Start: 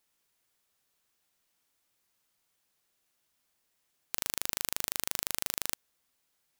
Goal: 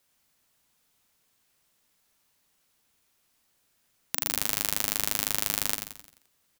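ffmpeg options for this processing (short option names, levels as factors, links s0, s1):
-filter_complex "[0:a]asplit=7[s0][s1][s2][s3][s4][s5][s6];[s1]adelay=87,afreqshift=-120,volume=0.473[s7];[s2]adelay=174,afreqshift=-240,volume=0.221[s8];[s3]adelay=261,afreqshift=-360,volume=0.105[s9];[s4]adelay=348,afreqshift=-480,volume=0.049[s10];[s5]adelay=435,afreqshift=-600,volume=0.0232[s11];[s6]adelay=522,afreqshift=-720,volume=0.0108[s12];[s0][s7][s8][s9][s10][s11][s12]amix=inputs=7:normalize=0,afreqshift=-300,volume=1.78"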